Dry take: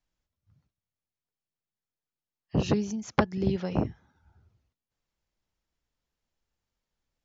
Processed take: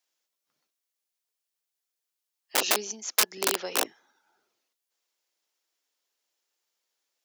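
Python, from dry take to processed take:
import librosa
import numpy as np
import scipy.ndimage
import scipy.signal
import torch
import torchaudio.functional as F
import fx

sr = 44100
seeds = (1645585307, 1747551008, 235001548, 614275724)

y = (np.mod(10.0 ** (20.0 / 20.0) * x + 1.0, 2.0) - 1.0) / 10.0 ** (20.0 / 20.0)
y = scipy.signal.sosfilt(scipy.signal.butter(4, 340.0, 'highpass', fs=sr, output='sos'), y)
y = fx.high_shelf(y, sr, hz=2700.0, db=11.5)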